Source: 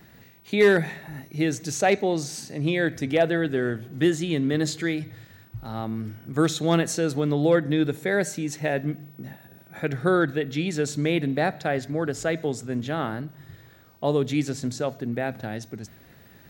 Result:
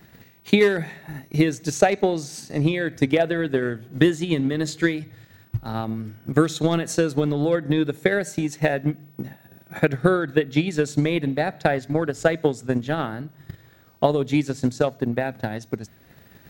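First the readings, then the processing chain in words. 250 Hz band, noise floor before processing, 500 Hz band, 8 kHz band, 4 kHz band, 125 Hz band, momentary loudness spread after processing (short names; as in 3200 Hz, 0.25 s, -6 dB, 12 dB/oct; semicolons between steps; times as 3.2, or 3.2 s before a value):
+2.5 dB, -52 dBFS, +2.0 dB, -1.0 dB, +1.5 dB, +3.0 dB, 12 LU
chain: limiter -14.5 dBFS, peak gain reduction 4 dB; transient shaper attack +12 dB, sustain -3 dB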